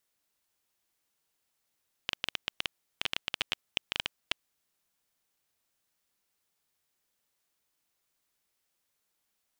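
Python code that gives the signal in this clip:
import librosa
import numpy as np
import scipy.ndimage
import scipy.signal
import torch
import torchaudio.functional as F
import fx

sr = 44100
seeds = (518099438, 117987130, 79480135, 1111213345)

y = fx.geiger_clicks(sr, seeds[0], length_s=2.32, per_s=12.0, level_db=-11.5)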